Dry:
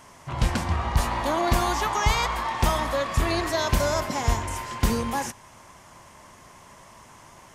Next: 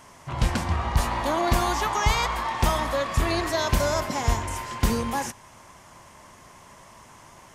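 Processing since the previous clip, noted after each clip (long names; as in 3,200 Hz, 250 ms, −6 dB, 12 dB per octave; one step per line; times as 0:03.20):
no processing that can be heard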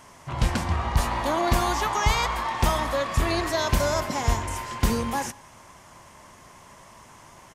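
slap from a distant wall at 32 metres, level −27 dB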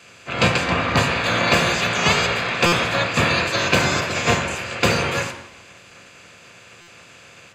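ceiling on every frequency bin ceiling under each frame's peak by 21 dB
convolution reverb RT60 0.85 s, pre-delay 3 ms, DRR 5 dB
buffer that repeats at 0:02.66/0:06.81, samples 256, times 10
level −4 dB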